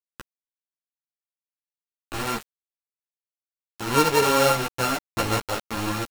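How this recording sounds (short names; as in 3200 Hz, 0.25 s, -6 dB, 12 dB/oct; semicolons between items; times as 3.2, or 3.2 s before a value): a buzz of ramps at a fixed pitch in blocks of 32 samples; chopped level 0.6 Hz, depth 65%, duty 25%; a quantiser's noise floor 6-bit, dither none; a shimmering, thickened sound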